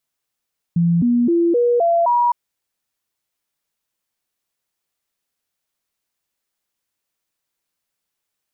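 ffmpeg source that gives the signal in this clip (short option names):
-f lavfi -i "aevalsrc='0.237*clip(min(mod(t,0.26),0.26-mod(t,0.26))/0.005,0,1)*sin(2*PI*170*pow(2,floor(t/0.26)/2)*mod(t,0.26))':d=1.56:s=44100"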